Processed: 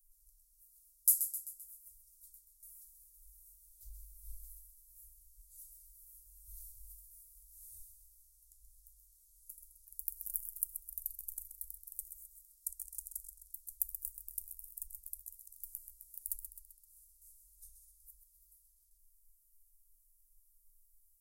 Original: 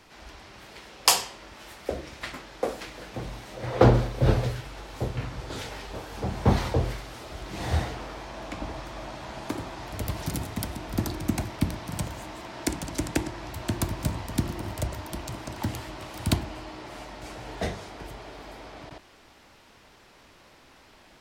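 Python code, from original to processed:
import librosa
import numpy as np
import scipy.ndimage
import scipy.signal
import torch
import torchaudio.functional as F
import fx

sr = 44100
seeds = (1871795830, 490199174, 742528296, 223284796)

p1 = scipy.signal.sosfilt(scipy.signal.cheby2(4, 80, [120.0, 2400.0], 'bandstop', fs=sr, output='sos'), x)
p2 = p1 + fx.echo_feedback(p1, sr, ms=130, feedback_pct=51, wet_db=-9.0, dry=0)
y = F.gain(torch.from_numpy(p2), 4.5).numpy()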